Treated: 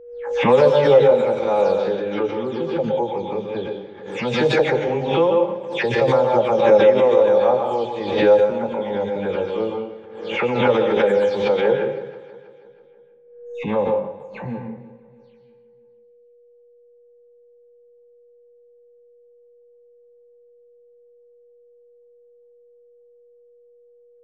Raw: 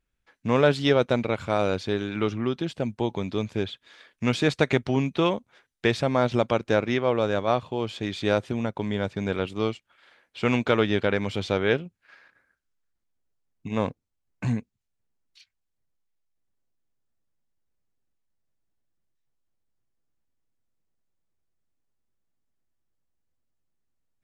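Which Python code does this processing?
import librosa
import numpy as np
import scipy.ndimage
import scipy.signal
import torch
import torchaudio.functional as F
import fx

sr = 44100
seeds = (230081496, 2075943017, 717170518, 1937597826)

p1 = fx.spec_delay(x, sr, highs='early', ms=233)
p2 = fx.rev_plate(p1, sr, seeds[0], rt60_s=0.73, hf_ratio=0.85, predelay_ms=110, drr_db=3.0)
p3 = fx.chorus_voices(p2, sr, voices=2, hz=0.17, base_ms=18, depth_ms=3.6, mix_pct=25)
p4 = fx.small_body(p3, sr, hz=(520.0, 820.0), ring_ms=40, db=16)
p5 = fx.env_lowpass(p4, sr, base_hz=1800.0, full_db=-11.5)
p6 = p5 + fx.echo_feedback(p5, sr, ms=323, feedback_pct=46, wet_db=-19.0, dry=0)
p7 = p6 + 10.0 ** (-48.0 / 20.0) * np.sin(2.0 * np.pi * 480.0 * np.arange(len(p6)) / sr)
p8 = fx.pre_swell(p7, sr, db_per_s=63.0)
y = p8 * 10.0 ** (-2.0 / 20.0)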